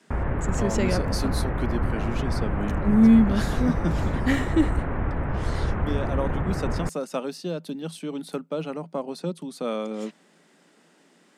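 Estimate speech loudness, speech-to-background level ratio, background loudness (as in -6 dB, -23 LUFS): -27.0 LUFS, 1.5 dB, -28.5 LUFS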